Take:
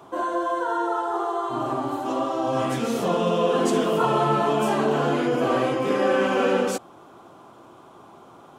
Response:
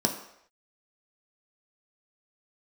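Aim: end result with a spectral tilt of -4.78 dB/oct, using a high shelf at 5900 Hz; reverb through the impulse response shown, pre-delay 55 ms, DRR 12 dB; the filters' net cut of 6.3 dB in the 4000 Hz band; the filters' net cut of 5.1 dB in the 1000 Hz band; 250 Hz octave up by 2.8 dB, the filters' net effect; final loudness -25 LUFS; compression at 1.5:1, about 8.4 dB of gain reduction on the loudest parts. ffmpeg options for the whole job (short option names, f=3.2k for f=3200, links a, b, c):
-filter_complex "[0:a]equalizer=f=250:t=o:g=4,equalizer=f=1k:t=o:g=-6.5,equalizer=f=4k:t=o:g=-7,highshelf=f=5.9k:g=-5.5,acompressor=threshold=-41dB:ratio=1.5,asplit=2[a][b];[1:a]atrim=start_sample=2205,adelay=55[c];[b][c]afir=irnorm=-1:irlink=0,volume=-21.5dB[d];[a][d]amix=inputs=2:normalize=0,volume=5dB"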